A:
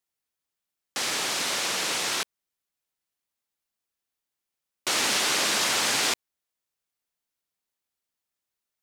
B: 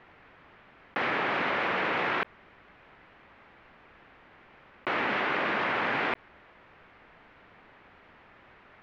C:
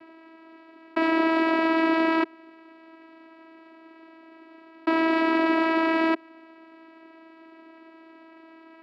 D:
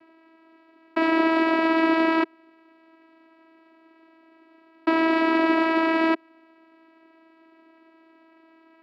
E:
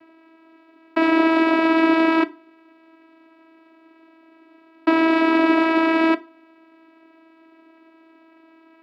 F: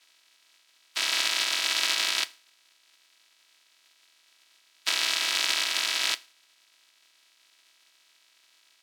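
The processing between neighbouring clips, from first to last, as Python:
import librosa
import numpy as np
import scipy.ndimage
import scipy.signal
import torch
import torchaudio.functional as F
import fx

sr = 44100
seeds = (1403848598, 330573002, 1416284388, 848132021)

y1 = scipy.signal.sosfilt(scipy.signal.butter(4, 2200.0, 'lowpass', fs=sr, output='sos'), x)
y1 = fx.env_flatten(y1, sr, amount_pct=100)
y2 = fx.low_shelf(y1, sr, hz=200.0, db=10.5)
y2 = fx.vocoder(y2, sr, bands=8, carrier='saw', carrier_hz=325.0)
y2 = y2 * librosa.db_to_amplitude(6.5)
y3 = fx.upward_expand(y2, sr, threshold_db=-37.0, expansion=1.5)
y3 = y3 * librosa.db_to_amplitude(2.5)
y4 = fx.rev_fdn(y3, sr, rt60_s=0.35, lf_ratio=1.0, hf_ratio=0.75, size_ms=20.0, drr_db=13.0)
y4 = y4 * librosa.db_to_amplitude(3.5)
y5 = fx.spec_flatten(y4, sr, power=0.2)
y5 = fx.bandpass_q(y5, sr, hz=3800.0, q=1.1)
y5 = y5 * librosa.db_to_amplitude(-4.0)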